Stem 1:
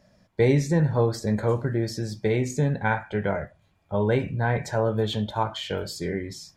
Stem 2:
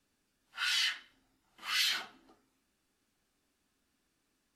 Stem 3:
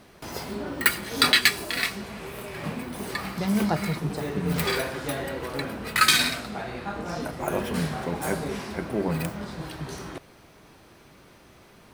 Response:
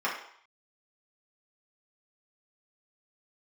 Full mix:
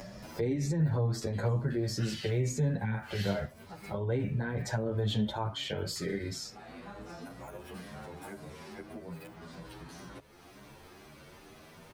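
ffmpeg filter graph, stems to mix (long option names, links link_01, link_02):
-filter_complex "[0:a]volume=2dB[link_01];[1:a]aeval=exprs='val(0)*gte(abs(val(0)),0.00422)':channel_layout=same,adelay=1400,volume=-10.5dB[link_02];[2:a]acrossover=split=180|4800[link_03][link_04][link_05];[link_03]acompressor=threshold=-34dB:ratio=4[link_06];[link_04]acompressor=threshold=-29dB:ratio=4[link_07];[link_05]acompressor=threshold=-44dB:ratio=4[link_08];[link_06][link_07][link_08]amix=inputs=3:normalize=0,asplit=2[link_09][link_10];[link_10]adelay=10.8,afreqshift=0.36[link_11];[link_09][link_11]amix=inputs=2:normalize=1,volume=-17dB[link_12];[link_01][link_12]amix=inputs=2:normalize=0,acrossover=split=310[link_13][link_14];[link_14]acompressor=threshold=-29dB:ratio=4[link_15];[link_13][link_15]amix=inputs=2:normalize=0,alimiter=limit=-20dB:level=0:latency=1:release=42,volume=0dB[link_16];[link_02][link_16]amix=inputs=2:normalize=0,acompressor=mode=upward:threshold=-31dB:ratio=2.5,asplit=2[link_17][link_18];[link_18]adelay=8.5,afreqshift=2.2[link_19];[link_17][link_19]amix=inputs=2:normalize=1"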